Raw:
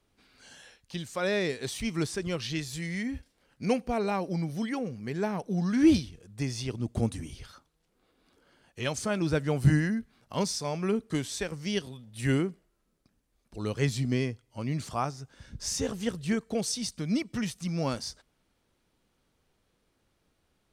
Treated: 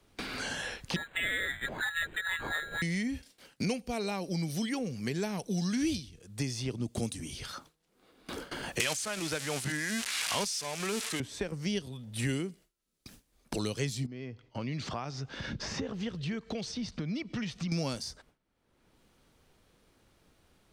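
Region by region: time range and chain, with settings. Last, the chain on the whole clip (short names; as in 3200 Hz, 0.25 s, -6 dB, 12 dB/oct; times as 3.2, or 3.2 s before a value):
0.96–2.82 air absorption 83 m + inverted band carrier 4000 Hz + decimation joined by straight lines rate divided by 8×
8.8–11.2 switching spikes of -22 dBFS + weighting filter ITU-R 468 + backwards sustainer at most 21 dB/s
14.06–17.72 air absorption 210 m + compressor 2.5:1, threshold -47 dBFS
whole clip: gate with hold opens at -54 dBFS; dynamic EQ 1300 Hz, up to -4 dB, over -44 dBFS, Q 0.76; three-band squash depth 100%; gain -2 dB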